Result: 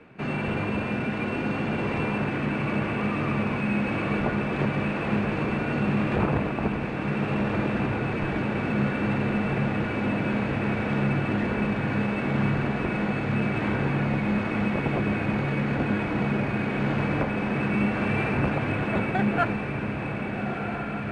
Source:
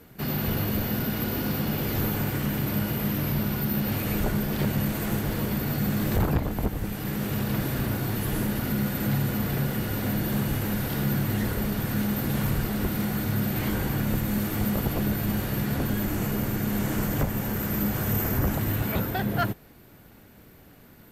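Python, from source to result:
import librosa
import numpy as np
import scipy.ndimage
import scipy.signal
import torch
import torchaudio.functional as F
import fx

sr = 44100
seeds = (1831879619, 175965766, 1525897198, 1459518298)

p1 = fx.highpass(x, sr, hz=230.0, slope=6)
p2 = p1 + fx.echo_diffused(p1, sr, ms=1365, feedback_pct=71, wet_db=-6.0, dry=0)
p3 = np.repeat(p2[::4], 4)[:len(p2)]
p4 = scipy.signal.sosfilt(scipy.signal.butter(2, 2100.0, 'lowpass', fs=sr, output='sos'), p3)
y = F.gain(torch.from_numpy(p4), 3.5).numpy()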